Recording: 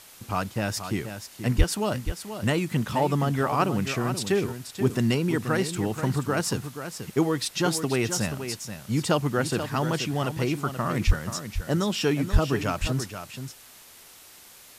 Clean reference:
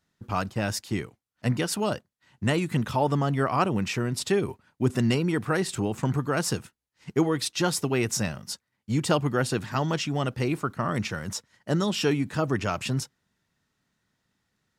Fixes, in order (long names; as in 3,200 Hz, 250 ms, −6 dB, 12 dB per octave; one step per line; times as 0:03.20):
high-pass at the plosives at 0:01.57/0:11.06/0:12.32
noise reduction from a noise print 27 dB
echo removal 481 ms −9.5 dB